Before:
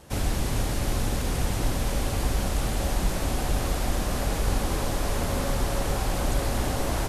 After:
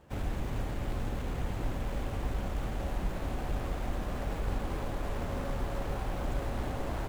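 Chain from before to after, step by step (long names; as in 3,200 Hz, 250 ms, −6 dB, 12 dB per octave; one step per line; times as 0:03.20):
running median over 9 samples
level −7.5 dB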